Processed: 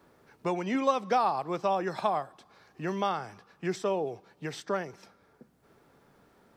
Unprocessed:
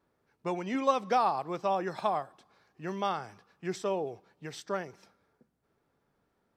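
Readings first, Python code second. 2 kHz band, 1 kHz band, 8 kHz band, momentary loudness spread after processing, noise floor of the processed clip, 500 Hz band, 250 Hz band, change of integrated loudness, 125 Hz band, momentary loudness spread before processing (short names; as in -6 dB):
+2.5 dB, +1.0 dB, +1.0 dB, 13 LU, -65 dBFS, +2.0 dB, +3.0 dB, +1.5 dB, +3.5 dB, 17 LU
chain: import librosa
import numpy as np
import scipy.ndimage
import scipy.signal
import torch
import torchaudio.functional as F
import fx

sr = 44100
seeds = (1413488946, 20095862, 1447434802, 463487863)

y = fx.band_squash(x, sr, depth_pct=40)
y = y * 10.0 ** (2.0 / 20.0)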